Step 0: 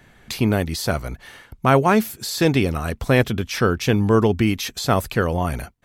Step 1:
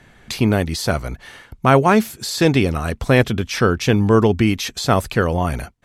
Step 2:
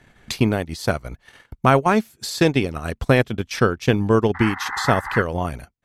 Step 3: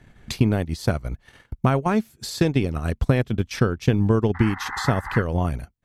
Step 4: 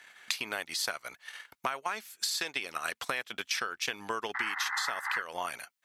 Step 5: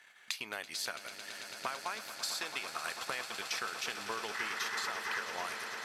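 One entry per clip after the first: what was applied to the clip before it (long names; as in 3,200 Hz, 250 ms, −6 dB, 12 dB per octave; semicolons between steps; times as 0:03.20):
low-pass filter 11,000 Hz 12 dB per octave; level +2.5 dB
sound drawn into the spectrogram noise, 0:04.34–0:05.22, 750–2,100 Hz −22 dBFS; transient designer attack +5 dB, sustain −12 dB; level −4.5 dB
downward compressor, threshold −16 dBFS, peak gain reduction 6.5 dB; low-shelf EQ 280 Hz +9.5 dB; level −3.5 dB
high-pass filter 1,400 Hz 12 dB per octave; downward compressor 10 to 1, threshold −37 dBFS, peak gain reduction 12.5 dB; level +8 dB
parametric band 280 Hz −2.5 dB 0.28 octaves; on a send: echo that builds up and dies away 111 ms, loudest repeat 8, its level −13.5 dB; on the sum: level −5.5 dB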